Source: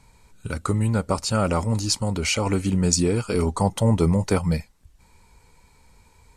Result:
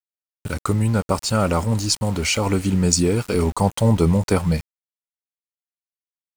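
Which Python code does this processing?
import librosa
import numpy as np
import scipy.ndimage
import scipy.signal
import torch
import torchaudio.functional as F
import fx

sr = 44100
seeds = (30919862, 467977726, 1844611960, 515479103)

y = np.where(np.abs(x) >= 10.0 ** (-34.5 / 20.0), x, 0.0)
y = F.gain(torch.from_numpy(y), 2.5).numpy()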